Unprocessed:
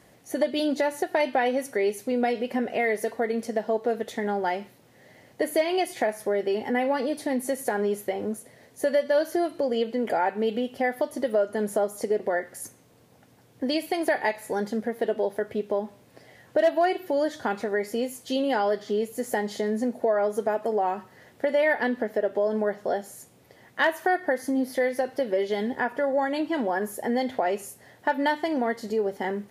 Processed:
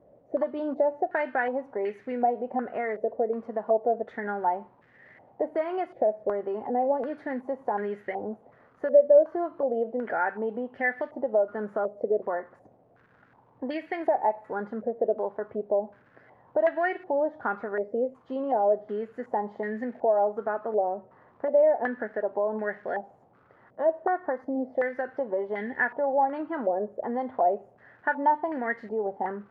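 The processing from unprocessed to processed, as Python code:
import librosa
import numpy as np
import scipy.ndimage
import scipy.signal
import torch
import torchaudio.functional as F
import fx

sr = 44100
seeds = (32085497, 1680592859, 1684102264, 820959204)

y = fx.dmg_crackle(x, sr, seeds[0], per_s=430.0, level_db=-43.0)
y = fx.filter_held_lowpass(y, sr, hz=2.7, low_hz=590.0, high_hz=1800.0)
y = F.gain(torch.from_numpy(y), -6.5).numpy()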